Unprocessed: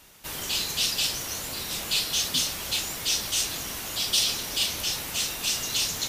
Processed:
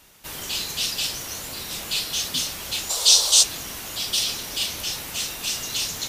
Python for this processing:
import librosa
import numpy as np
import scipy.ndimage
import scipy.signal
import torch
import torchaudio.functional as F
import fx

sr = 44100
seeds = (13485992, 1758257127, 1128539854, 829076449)

y = fx.graphic_eq(x, sr, hz=(125, 250, 500, 1000, 2000, 4000, 8000), db=(-10, -12, 10, 8, -8, 12, 11), at=(2.89, 3.42), fade=0.02)